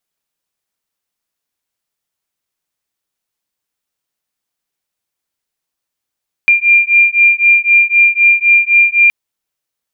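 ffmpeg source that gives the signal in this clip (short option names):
-f lavfi -i "aevalsrc='0.335*(sin(2*PI*2390*t)+sin(2*PI*2393.9*t))':d=2.62:s=44100"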